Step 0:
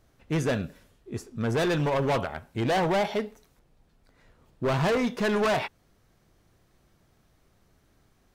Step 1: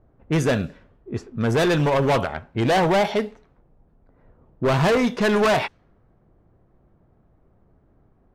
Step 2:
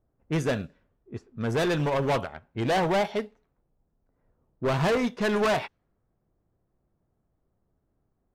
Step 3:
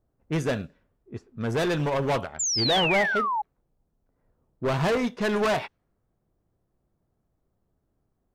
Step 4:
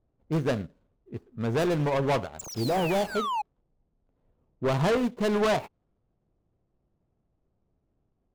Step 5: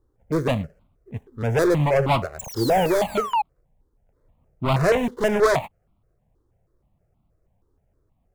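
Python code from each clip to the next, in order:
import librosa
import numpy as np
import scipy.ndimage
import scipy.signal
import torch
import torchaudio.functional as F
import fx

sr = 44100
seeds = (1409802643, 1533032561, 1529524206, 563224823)

y1 = fx.env_lowpass(x, sr, base_hz=850.0, full_db=-24.0)
y1 = y1 * librosa.db_to_amplitude(6.0)
y2 = fx.upward_expand(y1, sr, threshold_db=-37.0, expansion=1.5)
y2 = y2 * librosa.db_to_amplitude(-5.0)
y3 = fx.spec_paint(y2, sr, seeds[0], shape='fall', start_s=2.39, length_s=1.03, low_hz=810.0, high_hz=7500.0, level_db=-26.0)
y4 = scipy.signal.medfilt(y3, 25)
y5 = fx.phaser_held(y4, sr, hz=6.3, low_hz=670.0, high_hz=1700.0)
y5 = y5 * librosa.db_to_amplitude(9.0)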